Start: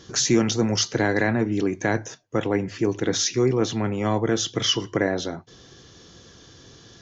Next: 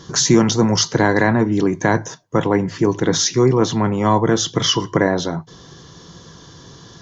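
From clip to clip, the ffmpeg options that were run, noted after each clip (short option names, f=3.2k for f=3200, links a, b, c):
-af "equalizer=f=160:t=o:w=0.33:g=10,equalizer=f=1k:t=o:w=0.33:g=10,equalizer=f=2.5k:t=o:w=0.33:g=-7,volume=5.5dB"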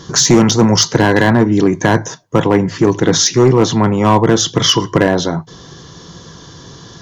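-af "asoftclip=type=hard:threshold=-8.5dB,volume=5.5dB"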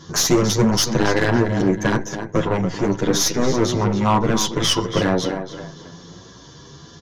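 -filter_complex "[0:a]asplit=2[a][b];[b]adelay=280,lowpass=f=4.5k:p=1,volume=-10dB,asplit=2[c][d];[d]adelay=280,lowpass=f=4.5k:p=1,volume=0.38,asplit=2[e][f];[f]adelay=280,lowpass=f=4.5k:p=1,volume=0.38,asplit=2[g][h];[h]adelay=280,lowpass=f=4.5k:p=1,volume=0.38[i];[c][e][g][i]amix=inputs=4:normalize=0[j];[a][j]amix=inputs=2:normalize=0,aeval=exprs='(tanh(2*val(0)+0.7)-tanh(0.7))/2':c=same,asplit=2[k][l];[l]adelay=9.5,afreqshift=0.86[m];[k][m]amix=inputs=2:normalize=1"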